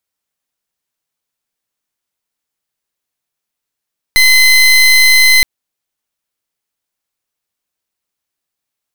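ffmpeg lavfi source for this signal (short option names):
-f lavfi -i "aevalsrc='0.447*(2*lt(mod(2050*t,1),0.28)-1)':d=1.27:s=44100"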